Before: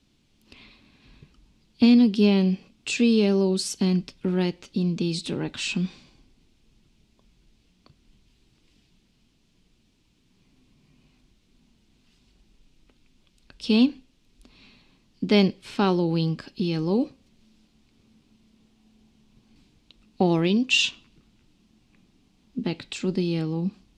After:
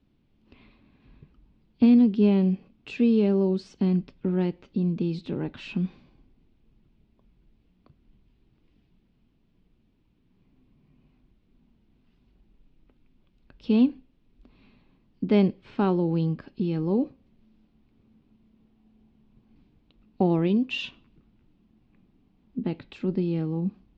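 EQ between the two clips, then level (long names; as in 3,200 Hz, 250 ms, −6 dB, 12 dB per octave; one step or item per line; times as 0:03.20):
head-to-tape spacing loss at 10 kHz 38 dB
0.0 dB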